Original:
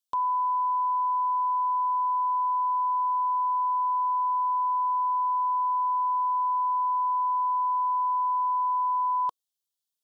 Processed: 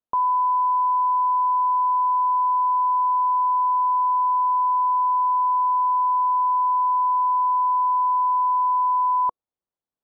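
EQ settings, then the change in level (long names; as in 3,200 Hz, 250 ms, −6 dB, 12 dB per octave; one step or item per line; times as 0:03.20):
low-pass filter 1,000 Hz 12 dB per octave
+8.5 dB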